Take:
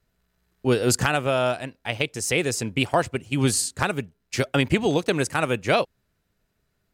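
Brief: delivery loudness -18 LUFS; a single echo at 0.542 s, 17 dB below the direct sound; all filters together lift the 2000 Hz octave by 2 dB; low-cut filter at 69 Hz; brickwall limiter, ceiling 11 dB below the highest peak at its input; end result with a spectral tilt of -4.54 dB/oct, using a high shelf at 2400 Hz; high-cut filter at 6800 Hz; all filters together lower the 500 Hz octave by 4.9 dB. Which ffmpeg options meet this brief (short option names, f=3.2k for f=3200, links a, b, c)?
-af "highpass=69,lowpass=6.8k,equalizer=f=500:t=o:g=-6.5,equalizer=f=2k:t=o:g=5.5,highshelf=f=2.4k:g=-4.5,alimiter=limit=-16dB:level=0:latency=1,aecho=1:1:542:0.141,volume=11.5dB"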